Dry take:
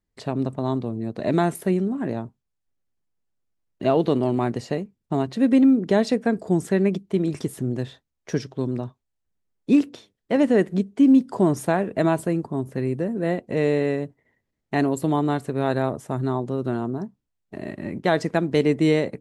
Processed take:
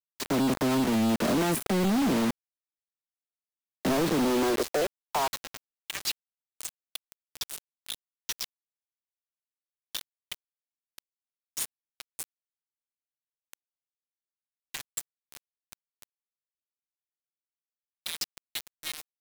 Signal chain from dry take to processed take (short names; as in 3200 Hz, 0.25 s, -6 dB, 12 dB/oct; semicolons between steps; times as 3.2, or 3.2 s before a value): half-wave gain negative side -12 dB; limiter -18 dBFS, peak gain reduction 11 dB; compressor 8:1, threshold -28 dBFS, peak gain reduction 7.5 dB; dispersion lows, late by 42 ms, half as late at 1500 Hz; high-pass sweep 220 Hz -> 3300 Hz, 4.14–6.29; added harmonics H 2 -20 dB, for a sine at -18.5 dBFS; companded quantiser 2-bit; gain +1.5 dB